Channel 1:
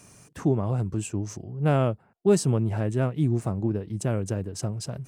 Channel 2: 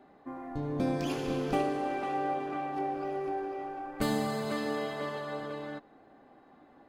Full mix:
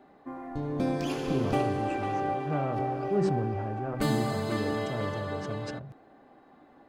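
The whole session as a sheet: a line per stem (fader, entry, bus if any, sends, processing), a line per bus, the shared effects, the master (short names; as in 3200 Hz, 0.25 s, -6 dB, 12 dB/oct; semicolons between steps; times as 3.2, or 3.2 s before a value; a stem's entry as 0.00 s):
-9.5 dB, 0.85 s, no send, LPF 1600 Hz 12 dB/oct; de-hum 64.01 Hz, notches 36; sustainer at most 21 dB/s
+1.5 dB, 0.00 s, no send, dry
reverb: off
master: bell 13000 Hz -2 dB 0.43 oct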